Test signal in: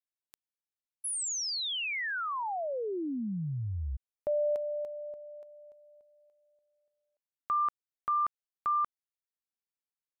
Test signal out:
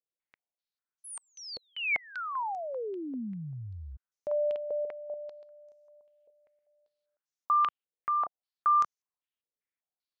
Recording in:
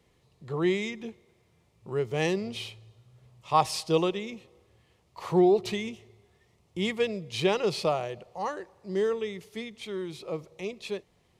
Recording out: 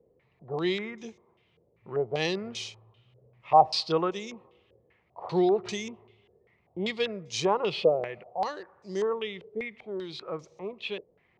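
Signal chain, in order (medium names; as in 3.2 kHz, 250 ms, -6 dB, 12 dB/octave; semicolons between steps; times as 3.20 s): bass shelf 83 Hz -9.5 dB; step-sequenced low-pass 5.1 Hz 500–6200 Hz; trim -2.5 dB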